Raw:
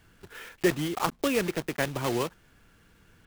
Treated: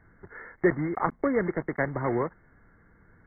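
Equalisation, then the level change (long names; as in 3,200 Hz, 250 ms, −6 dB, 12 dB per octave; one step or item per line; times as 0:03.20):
linear-phase brick-wall low-pass 2,200 Hz
+1.5 dB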